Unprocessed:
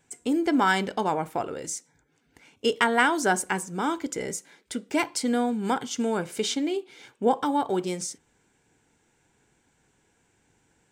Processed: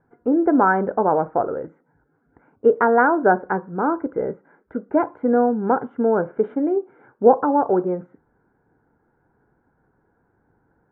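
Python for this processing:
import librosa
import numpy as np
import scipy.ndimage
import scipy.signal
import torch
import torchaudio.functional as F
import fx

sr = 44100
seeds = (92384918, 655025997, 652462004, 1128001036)

y = fx.dynamic_eq(x, sr, hz=530.0, q=1.4, threshold_db=-38.0, ratio=4.0, max_db=7)
y = scipy.signal.sosfilt(scipy.signal.ellip(4, 1.0, 70, 1500.0, 'lowpass', fs=sr, output='sos'), y)
y = y * 10.0 ** (4.5 / 20.0)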